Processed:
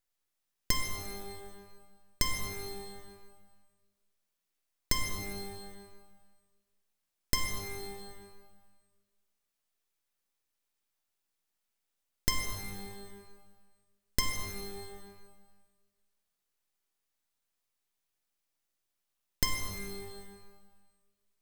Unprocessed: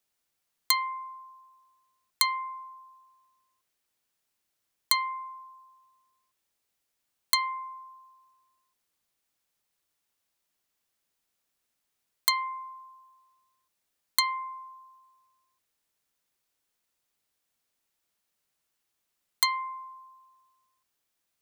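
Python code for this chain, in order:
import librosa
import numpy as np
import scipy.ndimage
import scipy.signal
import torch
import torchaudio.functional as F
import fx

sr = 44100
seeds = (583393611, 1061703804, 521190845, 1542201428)

y = np.abs(x)
y = fx.rev_shimmer(y, sr, seeds[0], rt60_s=1.2, semitones=12, shimmer_db=-2, drr_db=5.0)
y = y * librosa.db_to_amplitude(-3.0)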